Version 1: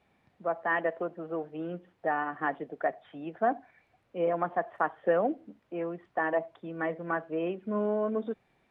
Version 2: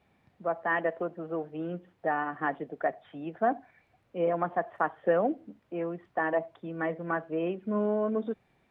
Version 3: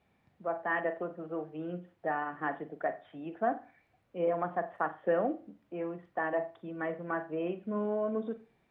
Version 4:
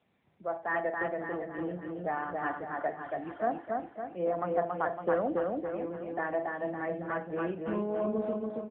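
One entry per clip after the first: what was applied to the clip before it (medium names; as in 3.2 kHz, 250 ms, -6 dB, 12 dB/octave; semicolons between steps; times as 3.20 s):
peaking EQ 93 Hz +4 dB 2.6 oct
reverberation, pre-delay 39 ms, DRR 11 dB; trim -4 dB
feedback delay 279 ms, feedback 53%, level -3 dB; AMR-NB 7.95 kbps 8 kHz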